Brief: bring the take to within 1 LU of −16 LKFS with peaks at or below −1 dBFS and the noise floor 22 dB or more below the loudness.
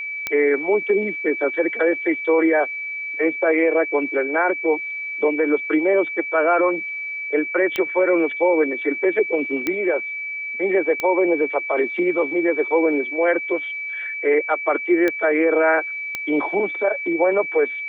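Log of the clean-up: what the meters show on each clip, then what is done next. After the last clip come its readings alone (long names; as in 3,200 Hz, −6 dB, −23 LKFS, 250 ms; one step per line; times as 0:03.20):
number of clicks 6; interfering tone 2,300 Hz; level of the tone −26 dBFS; integrated loudness −20.0 LKFS; sample peak −8.0 dBFS; target loudness −16.0 LKFS
→ click removal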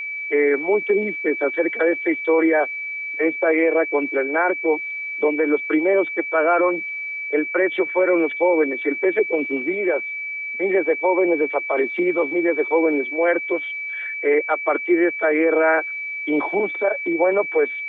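number of clicks 0; interfering tone 2,300 Hz; level of the tone −26 dBFS
→ notch filter 2,300 Hz, Q 30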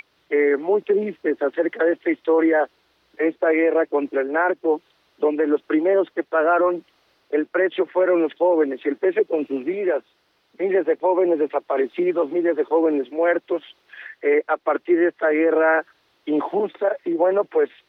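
interfering tone none found; integrated loudness −21.0 LKFS; sample peak −8.5 dBFS; target loudness −16.0 LKFS
→ level +5 dB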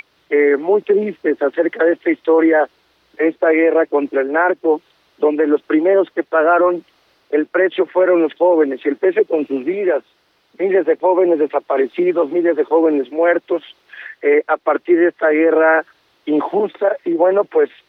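integrated loudness −16.0 LKFS; sample peak −3.5 dBFS; background noise floor −60 dBFS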